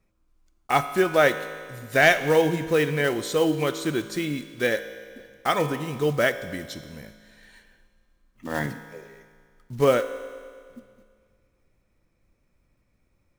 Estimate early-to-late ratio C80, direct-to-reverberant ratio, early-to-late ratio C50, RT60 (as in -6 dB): 12.0 dB, 9.5 dB, 11.5 dB, 2.0 s